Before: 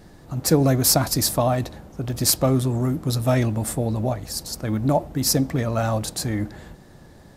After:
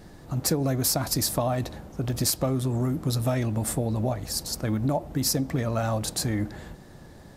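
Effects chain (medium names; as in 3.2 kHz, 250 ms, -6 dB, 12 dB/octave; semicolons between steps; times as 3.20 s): compression 5:1, threshold -22 dBFS, peak gain reduction 10 dB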